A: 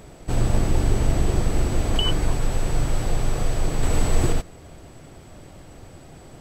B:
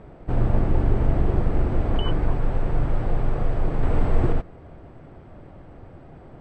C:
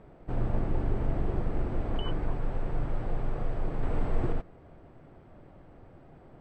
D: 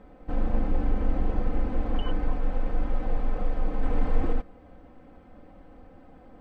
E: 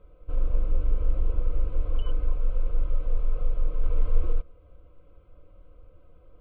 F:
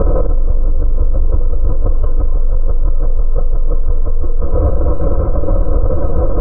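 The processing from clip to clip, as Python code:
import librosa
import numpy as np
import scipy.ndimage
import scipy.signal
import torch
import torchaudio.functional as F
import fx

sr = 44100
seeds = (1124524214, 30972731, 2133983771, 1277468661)

y1 = scipy.signal.sosfilt(scipy.signal.butter(2, 1600.0, 'lowpass', fs=sr, output='sos'), x)
y2 = fx.peak_eq(y1, sr, hz=68.0, db=-3.5, octaves=1.5)
y2 = y2 * 10.0 ** (-7.5 / 20.0)
y3 = y2 + 0.91 * np.pad(y2, (int(3.9 * sr / 1000.0), 0))[:len(y2)]
y4 = fx.low_shelf(y3, sr, hz=180.0, db=9.0)
y4 = fx.fixed_phaser(y4, sr, hz=1200.0, stages=8)
y4 = y4 * 10.0 ** (-6.5 / 20.0)
y5 = fx.rider(y4, sr, range_db=10, speed_s=2.0)
y5 = scipy.signal.sosfilt(scipy.signal.butter(4, 1200.0, 'lowpass', fs=sr, output='sos'), y5)
y5 = fx.env_flatten(y5, sr, amount_pct=100)
y5 = y5 * 10.0 ** (4.0 / 20.0)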